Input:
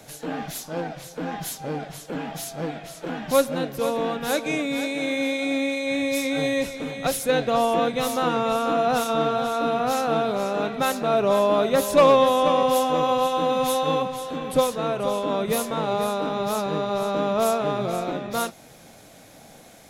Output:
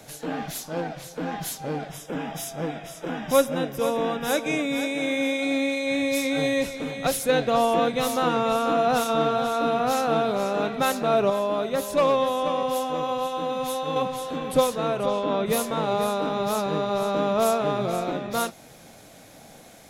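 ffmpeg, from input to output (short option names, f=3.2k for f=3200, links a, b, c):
-filter_complex "[0:a]asettb=1/sr,asplit=3[a][b][c];[a]atrim=end=1.904[d];[b]atrim=start=1.9:end=5.43,asetpts=PTS-STARTPTS,afade=t=in:d=0.004:c=qsin,afade=t=out:st=3.526:d=0.004:c=qsin,asuperstop=centerf=4300:order=8:qfactor=6.6[e];[c]atrim=start=5.426[f];[d][e]acrossfade=d=0.004:c1=hsin:c2=qsin[g];[g][f]acrossfade=d=0.004:c1=qsin:c2=hsin,asplit=3[h][i][j];[h]afade=t=out:st=15.05:d=0.02[k];[i]lowpass=5k,afade=t=in:st=15.05:d=0.02,afade=t=out:st=15.45:d=0.02[l];[j]afade=t=in:st=15.45:d=0.02[m];[k][l][m]amix=inputs=3:normalize=0,asplit=3[n][o][p];[n]atrim=end=11.302[q];[o]atrim=start=11.298:end=13.962,asetpts=PTS-STARTPTS,volume=-5.5dB[r];[p]atrim=start=13.958[s];[q][r]acrossfade=d=0.004:c1=hsin:c2=hsin[t];[t][s]acrossfade=d=0.004:c1=hsin:c2=hsin"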